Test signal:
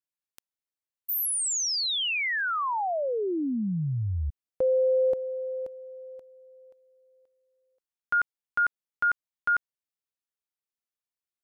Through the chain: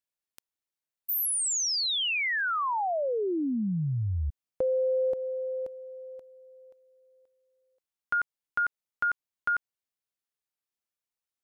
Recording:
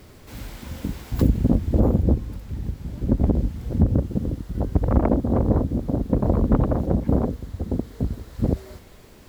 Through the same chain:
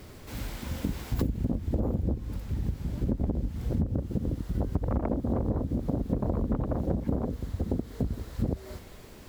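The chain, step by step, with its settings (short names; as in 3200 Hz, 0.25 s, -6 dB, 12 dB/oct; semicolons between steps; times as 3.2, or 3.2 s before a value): compressor 10:1, threshold -24 dBFS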